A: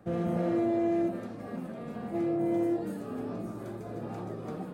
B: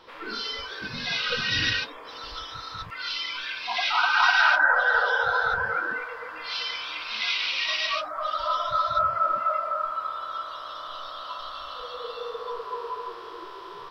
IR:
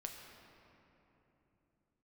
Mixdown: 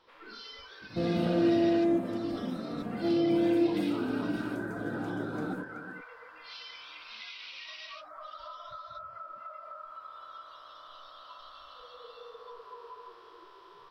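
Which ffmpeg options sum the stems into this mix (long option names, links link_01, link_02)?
-filter_complex "[0:a]equalizer=frequency=290:width_type=o:width=0.25:gain=12,adelay=900,volume=0dB,asplit=2[link_01][link_02];[link_02]volume=-11.5dB[link_03];[1:a]acompressor=threshold=-28dB:ratio=10,volume=-13dB[link_04];[link_03]aecho=0:1:376:1[link_05];[link_01][link_04][link_05]amix=inputs=3:normalize=0"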